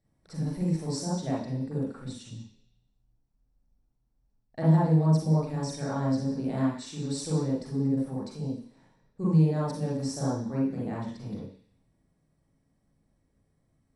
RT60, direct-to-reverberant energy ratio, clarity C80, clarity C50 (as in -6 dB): 0.50 s, -7.0 dB, 5.5 dB, -1.0 dB